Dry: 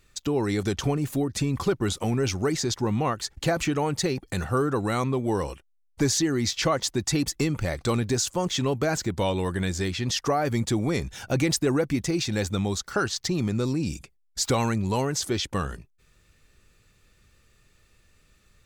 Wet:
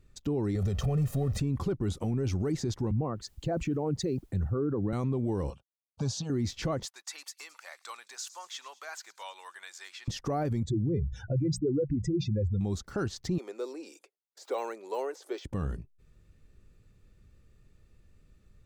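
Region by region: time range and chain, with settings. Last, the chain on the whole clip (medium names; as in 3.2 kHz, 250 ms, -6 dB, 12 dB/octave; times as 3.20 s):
0.55–1.40 s: jump at every zero crossing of -37 dBFS + comb 1.6 ms, depth 87%
2.91–4.93 s: resonances exaggerated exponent 1.5 + word length cut 10-bit, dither triangular + three bands expanded up and down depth 70%
5.50–6.30 s: band-pass 120–3800 Hz + treble shelf 2.1 kHz +11.5 dB + static phaser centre 810 Hz, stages 4
6.85–10.08 s: high-pass 1 kHz 24 dB/octave + feedback echo behind a high-pass 108 ms, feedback 60%, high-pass 4.7 kHz, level -14 dB
10.63–12.61 s: spectral contrast enhancement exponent 2.4 + hum notches 60/120/180 Hz + comb 2 ms, depth 41%
13.38–15.45 s: de-esser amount 85% + steep high-pass 410 Hz
whole clip: tilt shelf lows +8 dB, about 650 Hz; peak limiter -17 dBFS; trim -5 dB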